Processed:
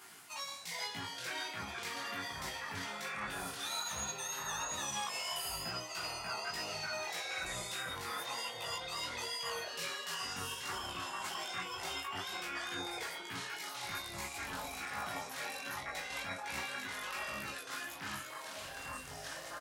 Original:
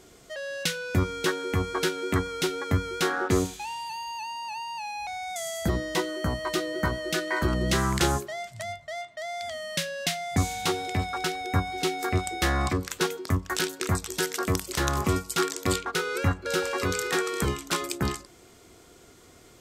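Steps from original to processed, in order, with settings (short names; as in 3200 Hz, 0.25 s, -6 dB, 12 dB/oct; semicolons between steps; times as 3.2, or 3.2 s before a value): HPF 110 Hz 24 dB/oct; resonant low shelf 680 Hz -8.5 dB, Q 3; reverse; compressor 6:1, threshold -42 dBFS, peak gain reduction 20 dB; reverse; limiter -34.5 dBFS, peak gain reduction 11 dB; chorus 1.2 Hz, delay 15.5 ms, depth 7.2 ms; formant shift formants +6 st; doubler 18 ms -4 dB; echoes that change speed 0.308 s, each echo -5 st, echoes 3; gain +3 dB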